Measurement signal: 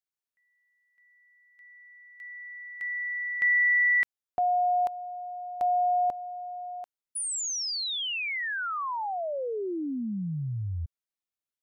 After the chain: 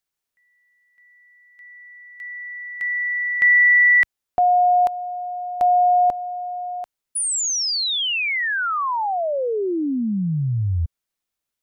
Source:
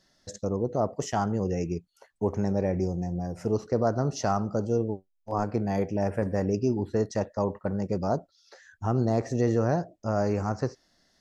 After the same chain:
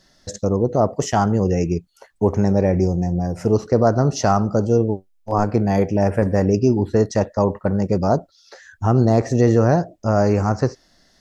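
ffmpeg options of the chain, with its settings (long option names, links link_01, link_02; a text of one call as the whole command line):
ffmpeg -i in.wav -af "lowshelf=frequency=63:gain=6,volume=9dB" out.wav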